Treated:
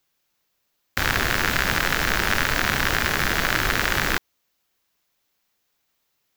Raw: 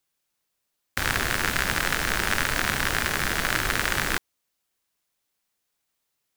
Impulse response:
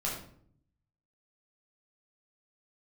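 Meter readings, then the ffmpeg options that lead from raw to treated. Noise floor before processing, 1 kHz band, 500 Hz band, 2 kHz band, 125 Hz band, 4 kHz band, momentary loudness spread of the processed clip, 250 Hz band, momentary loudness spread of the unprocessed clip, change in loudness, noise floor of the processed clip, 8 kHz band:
-79 dBFS, +3.5 dB, +4.0 dB, +3.0 dB, +4.0 dB, +3.0 dB, 3 LU, +4.0 dB, 3 LU, +3.0 dB, -73 dBFS, 0.0 dB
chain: -filter_complex "[0:a]equalizer=f=9.2k:w=2.2:g=-9,asplit=2[a][b];[b]alimiter=limit=-18dB:level=0:latency=1:release=64,volume=1dB[c];[a][c]amix=inputs=2:normalize=0"

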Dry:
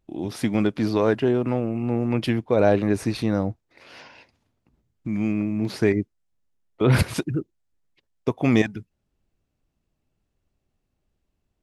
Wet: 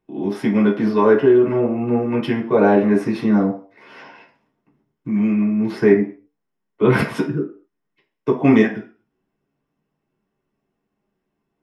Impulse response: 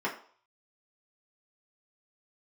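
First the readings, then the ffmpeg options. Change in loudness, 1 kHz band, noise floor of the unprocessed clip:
+5.5 dB, +7.0 dB, -77 dBFS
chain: -filter_complex "[0:a]flanger=delay=4.1:depth=4.5:regen=86:speed=0.28:shape=triangular[a];[1:a]atrim=start_sample=2205,afade=t=out:st=0.31:d=0.01,atrim=end_sample=14112[b];[a][b]afir=irnorm=-1:irlink=0,volume=1.5dB"

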